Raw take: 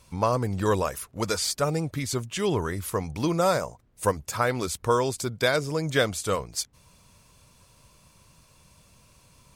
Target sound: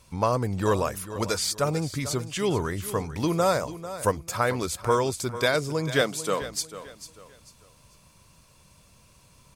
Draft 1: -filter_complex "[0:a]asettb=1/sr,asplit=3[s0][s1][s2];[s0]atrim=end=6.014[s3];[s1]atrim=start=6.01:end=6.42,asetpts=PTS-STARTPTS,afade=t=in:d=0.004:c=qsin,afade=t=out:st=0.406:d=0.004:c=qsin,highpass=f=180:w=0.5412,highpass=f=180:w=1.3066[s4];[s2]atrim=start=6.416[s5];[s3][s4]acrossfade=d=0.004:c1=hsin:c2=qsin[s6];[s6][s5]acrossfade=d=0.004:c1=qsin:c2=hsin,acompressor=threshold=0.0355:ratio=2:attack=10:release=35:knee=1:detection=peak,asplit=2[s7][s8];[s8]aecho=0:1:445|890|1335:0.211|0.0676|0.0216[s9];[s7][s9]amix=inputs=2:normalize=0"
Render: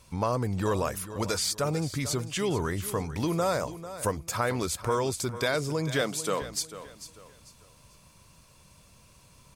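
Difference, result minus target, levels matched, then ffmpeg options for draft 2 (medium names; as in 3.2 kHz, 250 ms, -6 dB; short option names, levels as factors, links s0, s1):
compression: peak gain reduction +6 dB
-filter_complex "[0:a]asettb=1/sr,asplit=3[s0][s1][s2];[s0]atrim=end=6.014[s3];[s1]atrim=start=6.01:end=6.42,asetpts=PTS-STARTPTS,afade=t=in:d=0.004:c=qsin,afade=t=out:st=0.406:d=0.004:c=qsin,highpass=f=180:w=0.5412,highpass=f=180:w=1.3066[s4];[s2]atrim=start=6.416[s5];[s3][s4]acrossfade=d=0.004:c1=hsin:c2=qsin[s6];[s6][s5]acrossfade=d=0.004:c1=qsin:c2=hsin,asplit=2[s7][s8];[s8]aecho=0:1:445|890|1335:0.211|0.0676|0.0216[s9];[s7][s9]amix=inputs=2:normalize=0"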